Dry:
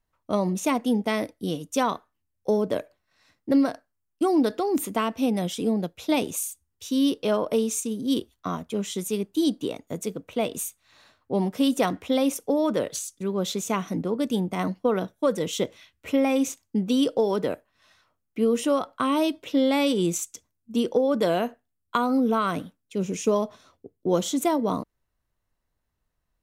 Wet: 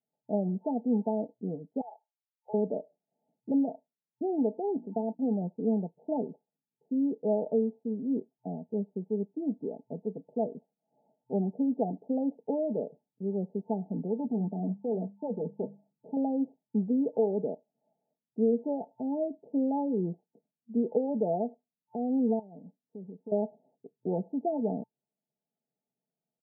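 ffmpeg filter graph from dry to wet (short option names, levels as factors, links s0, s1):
-filter_complex "[0:a]asettb=1/sr,asplit=3[s0][s1][s2];[s0]atrim=end=1.814[s3];[s1]atrim=start=1.81:end=2.54,asetpts=PTS-STARTPTS,afade=t=in:d=0.004:c=qsin,afade=t=out:st=0.726:d=0.004:c=qsin,highpass=f=900:w=0.5412,highpass=f=900:w=1.3066,asplit=2[s4][s5];[s5]adelay=12,volume=0.251[s6];[s4][s6]amix=inputs=2:normalize=0,atrim=end_sample=32193[s7];[s2]atrim=start=2.536[s8];[s3][s7]acrossfade=d=0.004:c1=hsin:c2=qsin[s9];[s9][s8]acrossfade=d=0.004:c1=qsin:c2=hsin,asettb=1/sr,asplit=3[s10][s11][s12];[s10]atrim=end=4.764[s13];[s11]atrim=start=4.76:end=5.32,asetpts=PTS-STARTPTS,afade=t=in:d=0.004:c=qsin,afade=t=out:st=0.556:d=0.004:c=qsin,agate=range=0.0224:threshold=0.0141:ratio=16:release=100:detection=peak,bandreject=f=60:t=h:w=6,bandreject=f=120:t=h:w=6,bandreject=f=180:t=h:w=6,bandreject=f=240:t=h:w=6,bandreject=f=300:t=h:w=6,bandreject=f=360:t=h:w=6[s14];[s12]atrim=start=5.316[s15];[s13][s14]acrossfade=d=0.004:c1=hsin:c2=qsin[s16];[s16][s15]acrossfade=d=0.004:c1=qsin:c2=hsin,asettb=1/sr,asplit=3[s17][s18][s19];[s17]atrim=end=14.204[s20];[s18]atrim=start=14.2:end=16.17,asetpts=PTS-STARTPTS,afade=t=in:d=0.004:c=qsin,afade=t=out:st=1.966:d=0.004:c=qsin,lowshelf=f=340:g=4.5,bandreject=f=50:t=h:w=6,bandreject=f=100:t=h:w=6,bandreject=f=150:t=h:w=6,bandreject=f=200:t=h:w=6,asoftclip=type=hard:threshold=0.075[s21];[s19]atrim=start=16.166[s22];[s20][s21]acrossfade=d=0.004:c1=hsin:c2=qsin[s23];[s23][s22]acrossfade=d=0.004:c1=qsin:c2=hsin,asettb=1/sr,asplit=3[s24][s25][s26];[s24]atrim=end=22.394[s27];[s25]atrim=start=22.39:end=23.32,asetpts=PTS-STARTPTS,afade=t=in:d=0.004:c=qsin,afade=t=out:st=0.926:d=0.004:c=qsin,lowpass=f=2600:t=q:w=8.1,acompressor=threshold=0.0158:ratio=5:attack=3.2:release=140:knee=1:detection=peak[s28];[s26]atrim=start=23.316[s29];[s27][s28]acrossfade=d=0.004:c1=hsin:c2=qsin[s30];[s30][s29]acrossfade=d=0.004:c1=qsin:c2=hsin,afftfilt=real='re*between(b*sr/4096,120,890)':imag='im*between(b*sr/4096,120,890)':win_size=4096:overlap=0.75,aecho=1:1:4.6:0.55,volume=0.447"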